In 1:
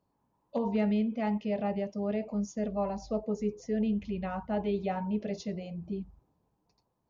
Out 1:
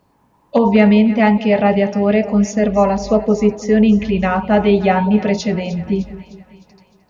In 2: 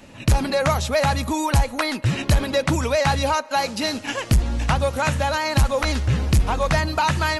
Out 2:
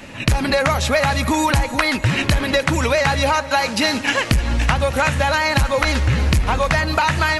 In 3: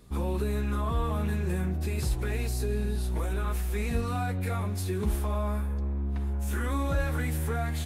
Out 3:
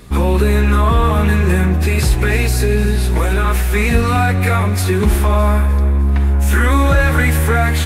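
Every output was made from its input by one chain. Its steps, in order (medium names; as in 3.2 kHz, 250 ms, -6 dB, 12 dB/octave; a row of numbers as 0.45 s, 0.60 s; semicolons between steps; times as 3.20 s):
peaking EQ 2 kHz +6 dB 1.3 oct; compression, threshold -21 dBFS; two-band feedback delay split 730 Hz, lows 203 ms, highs 305 ms, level -15 dB; peak normalisation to -1.5 dBFS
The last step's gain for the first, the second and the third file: +17.5 dB, +7.0 dB, +15.0 dB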